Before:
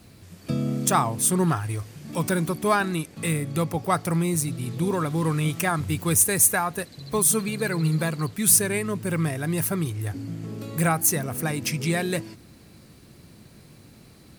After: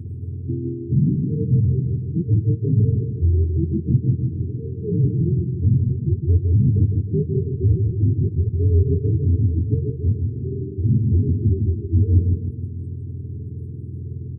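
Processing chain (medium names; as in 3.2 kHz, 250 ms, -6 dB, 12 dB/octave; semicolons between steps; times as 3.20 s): spectrum inverted on a logarithmic axis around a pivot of 410 Hz; bass shelf 160 Hz +8 dB; reverse; compression 10:1, threshold -35 dBFS, peak gain reduction 25.5 dB; reverse; RIAA curve playback; feedback delay 156 ms, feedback 48%, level -5.5 dB; in parallel at +0.5 dB: peak limiter -23.5 dBFS, peak gain reduction 9.5 dB; on the sum: FFT band-reject 460–8200 Hz; trim +5 dB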